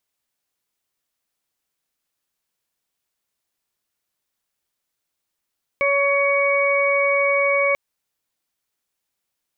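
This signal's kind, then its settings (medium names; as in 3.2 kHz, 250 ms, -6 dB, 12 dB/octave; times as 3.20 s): steady additive tone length 1.94 s, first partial 561 Hz, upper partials -6/-19/0 dB, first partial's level -19 dB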